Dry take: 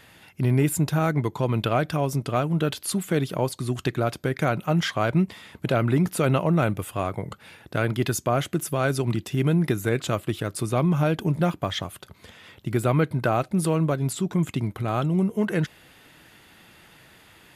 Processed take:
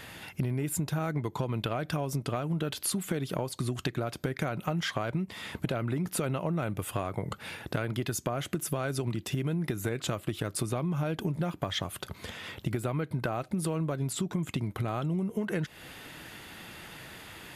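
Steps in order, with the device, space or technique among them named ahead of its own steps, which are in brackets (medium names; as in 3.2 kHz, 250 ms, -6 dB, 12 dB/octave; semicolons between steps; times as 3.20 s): serial compression, leveller first (compression 3:1, threshold -23 dBFS, peak gain reduction 6 dB; compression 5:1, threshold -35 dBFS, peak gain reduction 12.5 dB); trim +6 dB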